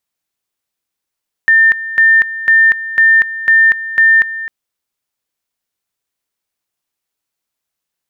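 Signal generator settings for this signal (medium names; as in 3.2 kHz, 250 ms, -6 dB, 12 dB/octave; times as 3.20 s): two-level tone 1.8 kHz -5 dBFS, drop 14.5 dB, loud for 0.24 s, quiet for 0.26 s, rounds 6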